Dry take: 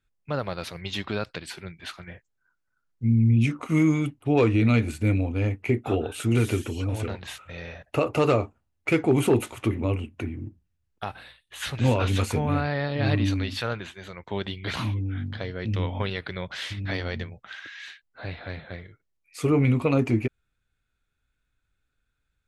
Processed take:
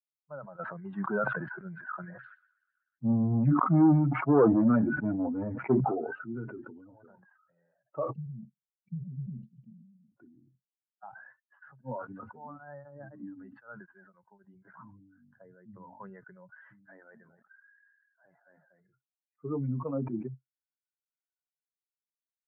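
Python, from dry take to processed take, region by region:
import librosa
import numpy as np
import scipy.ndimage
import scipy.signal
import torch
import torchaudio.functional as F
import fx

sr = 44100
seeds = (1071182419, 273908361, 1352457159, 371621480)

y = fx.chain(x, sr, fx.leveller(passes=3),
    fx.echo_wet_highpass(ms=123, feedback_pct=84, hz=3600.0, wet_db=-18),
    fx.sustainer(db_per_s=71.0), at=(0.59, 5.8))
y = fx.chain(y, sr, fx.cheby1_bandstop(low_hz=180.0, high_hz=4400.0, order=3),
    fx.comb(ms=5.1, depth=0.94), at=(8.13, 10.09))
y = fx.chain(y, sr, fx.hum_notches(base_hz=50, count=3),
    fx.tremolo_abs(hz=3.9), at=(11.69, 14.65))
y = fx.chain(y, sr, fx.low_shelf(hz=140.0, db=-10.0),
    fx.echo_feedback(ms=245, feedback_pct=28, wet_db=-18.5), at=(16.71, 18.8))
y = fx.bin_expand(y, sr, power=2.0)
y = scipy.signal.sosfilt(scipy.signal.cheby1(5, 1.0, [130.0, 1500.0], 'bandpass', fs=sr, output='sos'), y)
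y = fx.sustainer(y, sr, db_per_s=41.0)
y = y * 10.0 ** (-3.0 / 20.0)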